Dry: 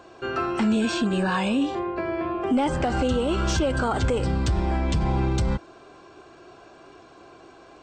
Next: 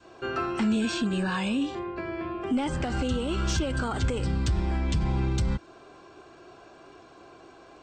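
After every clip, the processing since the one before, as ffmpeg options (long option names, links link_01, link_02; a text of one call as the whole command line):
ffmpeg -i in.wav -af "adynamicequalizer=threshold=0.0126:dfrequency=660:dqfactor=0.75:tfrequency=660:tqfactor=0.75:attack=5:release=100:ratio=0.375:range=3.5:mode=cutabove:tftype=bell,volume=-2dB" out.wav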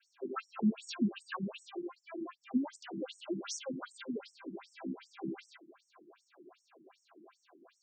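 ffmpeg -i in.wav -af "lowshelf=frequency=170:gain=8.5,afftfilt=real='re*between(b*sr/1024,240*pow(7800/240,0.5+0.5*sin(2*PI*2.6*pts/sr))/1.41,240*pow(7800/240,0.5+0.5*sin(2*PI*2.6*pts/sr))*1.41)':imag='im*between(b*sr/1024,240*pow(7800/240,0.5+0.5*sin(2*PI*2.6*pts/sr))/1.41,240*pow(7800/240,0.5+0.5*sin(2*PI*2.6*pts/sr))*1.41)':win_size=1024:overlap=0.75,volume=-4.5dB" out.wav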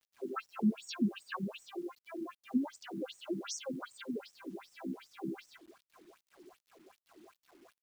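ffmpeg -i in.wav -af "acrusher=bits=10:mix=0:aa=0.000001" out.wav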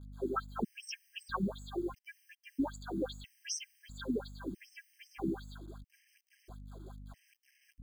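ffmpeg -i in.wav -af "aeval=exprs='val(0)+0.00251*(sin(2*PI*50*n/s)+sin(2*PI*2*50*n/s)/2+sin(2*PI*3*50*n/s)/3+sin(2*PI*4*50*n/s)/4+sin(2*PI*5*50*n/s)/5)':channel_layout=same,afftfilt=real='re*gt(sin(2*PI*0.77*pts/sr)*(1-2*mod(floor(b*sr/1024/1600),2)),0)':imag='im*gt(sin(2*PI*0.77*pts/sr)*(1-2*mod(floor(b*sr/1024/1600),2)),0)':win_size=1024:overlap=0.75,volume=4.5dB" out.wav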